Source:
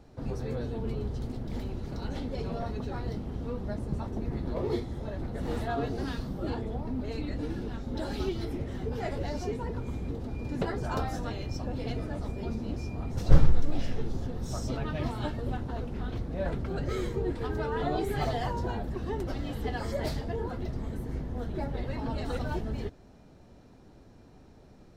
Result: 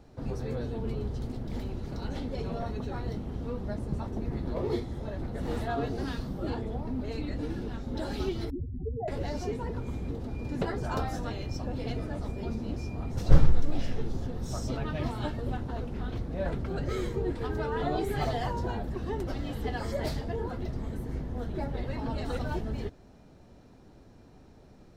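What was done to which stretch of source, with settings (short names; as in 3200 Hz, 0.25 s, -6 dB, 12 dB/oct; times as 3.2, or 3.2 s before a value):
2.36–3.29 notch 4900 Hz
8.5–9.08 spectral contrast raised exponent 3.5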